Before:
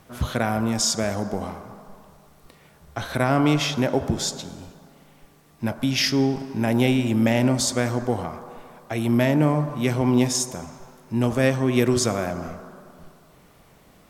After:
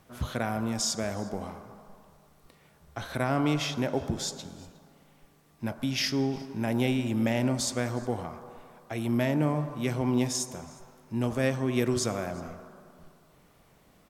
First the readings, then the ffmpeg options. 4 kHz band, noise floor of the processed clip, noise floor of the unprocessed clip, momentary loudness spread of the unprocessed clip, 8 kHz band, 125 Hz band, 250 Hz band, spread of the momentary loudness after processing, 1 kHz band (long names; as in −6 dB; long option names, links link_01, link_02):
−7.0 dB, −61 dBFS, −54 dBFS, 16 LU, −7.0 dB, −7.0 dB, −7.0 dB, 16 LU, −7.0 dB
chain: -af "aecho=1:1:360:0.0631,volume=-7dB"